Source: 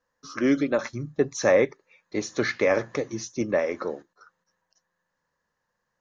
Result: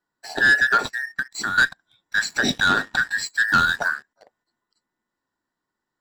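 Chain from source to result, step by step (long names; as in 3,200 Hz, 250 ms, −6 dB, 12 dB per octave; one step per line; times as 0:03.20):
frequency inversion band by band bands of 2,000 Hz
0:00.81–0:01.58: downward compressor 12 to 1, threshold −31 dBFS, peak gain reduction 17 dB
0:02.28–0:02.94: dynamic equaliser 1,500 Hz, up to −4 dB, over −30 dBFS, Q 0.91
leveller curve on the samples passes 2
0:03.48–0:03.88: bass and treble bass +5 dB, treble +5 dB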